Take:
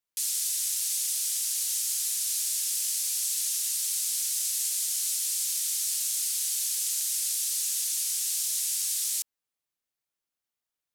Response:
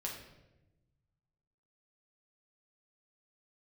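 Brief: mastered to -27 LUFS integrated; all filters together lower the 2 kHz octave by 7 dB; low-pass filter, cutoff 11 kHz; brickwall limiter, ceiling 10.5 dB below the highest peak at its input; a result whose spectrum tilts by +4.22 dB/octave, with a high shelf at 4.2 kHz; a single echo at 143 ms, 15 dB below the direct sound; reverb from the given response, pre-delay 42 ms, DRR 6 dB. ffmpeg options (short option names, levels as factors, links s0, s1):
-filter_complex "[0:a]lowpass=11000,equalizer=f=2000:t=o:g=-7.5,highshelf=f=4200:g=-6.5,alimiter=level_in=2.66:limit=0.0631:level=0:latency=1,volume=0.376,aecho=1:1:143:0.178,asplit=2[s0][s1];[1:a]atrim=start_sample=2205,adelay=42[s2];[s1][s2]afir=irnorm=-1:irlink=0,volume=0.501[s3];[s0][s3]amix=inputs=2:normalize=0,volume=3.55"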